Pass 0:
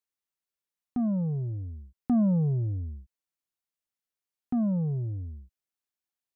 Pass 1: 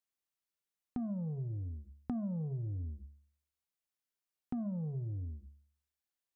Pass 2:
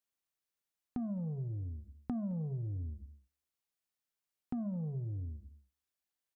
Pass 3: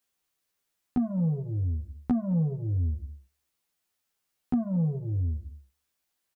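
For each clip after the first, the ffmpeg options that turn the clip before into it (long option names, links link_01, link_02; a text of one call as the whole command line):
ffmpeg -i in.wav -af "bandreject=frequency=71.82:width_type=h:width=4,bandreject=frequency=143.64:width_type=h:width=4,bandreject=frequency=215.46:width_type=h:width=4,bandreject=frequency=287.28:width_type=h:width=4,bandreject=frequency=359.1:width_type=h:width=4,bandreject=frequency=430.92:width_type=h:width=4,bandreject=frequency=502.74:width_type=h:width=4,bandreject=frequency=574.56:width_type=h:width=4,bandreject=frequency=646.38:width_type=h:width=4,bandreject=frequency=718.2:width_type=h:width=4,bandreject=frequency=790.02:width_type=h:width=4,bandreject=frequency=861.84:width_type=h:width=4,bandreject=frequency=933.66:width_type=h:width=4,bandreject=frequency=1005.48:width_type=h:width=4,bandreject=frequency=1077.3:width_type=h:width=4,bandreject=frequency=1149.12:width_type=h:width=4,bandreject=frequency=1220.94:width_type=h:width=4,bandreject=frequency=1292.76:width_type=h:width=4,acompressor=threshold=-34dB:ratio=6,volume=-2dB" out.wav
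ffmpeg -i in.wav -af "aecho=1:1:216:0.0794" out.wav
ffmpeg -i in.wav -filter_complex "[0:a]asplit=2[link_01][link_02];[link_02]adelay=12,volume=-2dB[link_03];[link_01][link_03]amix=inputs=2:normalize=0,volume=8dB" out.wav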